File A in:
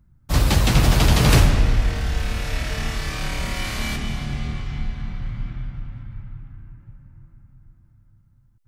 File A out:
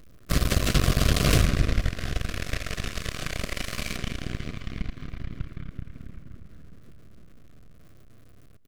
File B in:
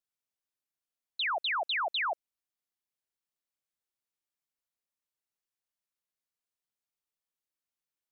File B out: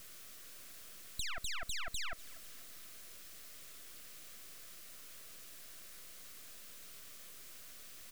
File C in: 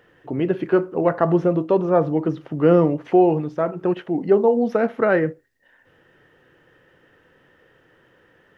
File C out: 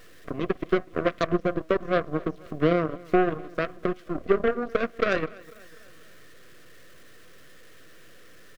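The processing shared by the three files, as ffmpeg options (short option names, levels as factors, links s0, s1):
-af "aeval=exprs='val(0)+0.5*0.0282*sgn(val(0))':c=same,acompressor=threshold=0.0224:ratio=2,aeval=exprs='0.211*(cos(1*acos(clip(val(0)/0.211,-1,1)))-cos(1*PI/2))+0.00944*(cos(4*acos(clip(val(0)/0.211,-1,1)))-cos(4*PI/2))+0.0237*(cos(6*acos(clip(val(0)/0.211,-1,1)))-cos(6*PI/2))+0.0335*(cos(7*acos(clip(val(0)/0.211,-1,1)))-cos(7*PI/2))':c=same,asuperstop=centerf=870:order=4:qfactor=3,aecho=1:1:247|494|741|988:0.075|0.0435|0.0252|0.0146,volume=1.88"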